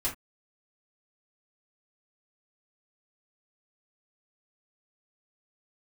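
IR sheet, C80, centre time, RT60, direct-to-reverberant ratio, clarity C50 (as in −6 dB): 19.0 dB, 19 ms, non-exponential decay, −7.0 dB, 10.5 dB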